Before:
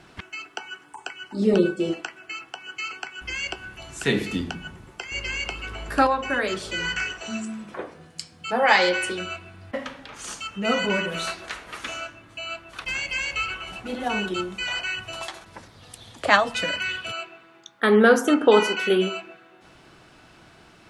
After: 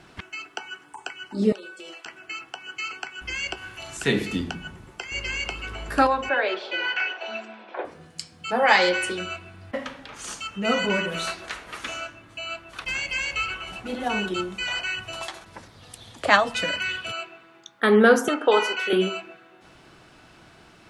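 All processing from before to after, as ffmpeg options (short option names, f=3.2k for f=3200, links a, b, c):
-filter_complex "[0:a]asettb=1/sr,asplit=3[a][b][c];[a]atrim=end=1.524[d];[b]atrim=start=1.52:end=2.06,asetpts=PTS-STARTPTS,afade=t=in:d=0.004:c=qsin,afade=t=out:st=0.536:d=0.004:c=qsin,highpass=960,acompressor=threshold=-36dB:ratio=10:attack=3.2:release=140:knee=1:detection=peak[e];[c]atrim=start=2.056[f];[d][e]acrossfade=d=0.004:c1=hsin:c2=qsin[g];[g][f]acrossfade=d=0.004:c1=qsin:c2=hsin,asettb=1/sr,asplit=3[h][i][j];[h]atrim=end=3.574[k];[i]atrim=start=3.57:end=3.97,asetpts=PTS-STARTPTS,afade=t=in:d=0.004:c=qsin,afade=t=out:st=0.396:d=0.004:c=qsin,tiltshelf=f=650:g=-3.5,asplit=2[l][m];[m]adelay=41,volume=-4.5dB[n];[l][n]amix=inputs=2:normalize=0,atrim=end_sample=17640[o];[j]atrim=start=3.966[p];[k][o]acrossfade=d=0.004:c1=hsin:c2=qsin[q];[q][p]acrossfade=d=0.004:c1=qsin:c2=hsin,asettb=1/sr,asplit=3[r][s][t];[r]atrim=end=6.294[u];[s]atrim=start=6.29:end=7.85,asetpts=PTS-STARTPTS,afade=t=in:d=0.004:c=qsin,afade=t=out:st=1.556:d=0.004:c=qsin,acontrast=43,highpass=f=400:w=0.5412,highpass=f=400:w=1.3066,equalizer=f=450:t=q:w=4:g=-6,equalizer=f=790:t=q:w=4:g=3,equalizer=f=1.2k:t=q:w=4:g=-9,equalizer=f=1.9k:t=q:w=4:g=-6,equalizer=f=3k:t=q:w=4:g=-4,lowpass=f=3.5k:w=0.5412,lowpass=f=3.5k:w=1.3066[v];[t]atrim=start=7.846[w];[u][v]acrossfade=d=0.004:c1=hsin:c2=qsin[x];[x][w]acrossfade=d=0.004:c1=qsin:c2=hsin,asettb=1/sr,asplit=3[y][z][aa];[y]atrim=end=18.284[ab];[z]atrim=start=18.28:end=18.93,asetpts=PTS-STARTPTS,afade=t=in:d=0.004:c=qsin,afade=t=out:st=0.646:d=0.004:c=qsin,highpass=480,highshelf=f=6.4k:g=-5.5[ac];[aa]atrim=start=18.926[ad];[ab][ac]acrossfade=d=0.004:c1=hsin:c2=qsin[ae];[ae][ad]acrossfade=d=0.004:c1=qsin:c2=hsin"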